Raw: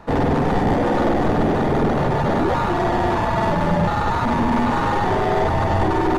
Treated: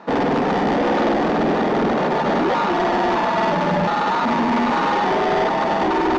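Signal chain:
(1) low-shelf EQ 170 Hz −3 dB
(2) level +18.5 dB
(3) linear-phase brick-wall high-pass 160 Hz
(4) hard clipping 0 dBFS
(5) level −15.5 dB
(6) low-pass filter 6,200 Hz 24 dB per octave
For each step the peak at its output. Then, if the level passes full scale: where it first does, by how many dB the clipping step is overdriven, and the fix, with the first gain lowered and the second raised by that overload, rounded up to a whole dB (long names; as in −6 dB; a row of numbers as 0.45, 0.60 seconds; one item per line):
−9.5, +9.0, +7.5, 0.0, −15.5, −14.5 dBFS
step 2, 7.5 dB
step 2 +10.5 dB, step 5 −7.5 dB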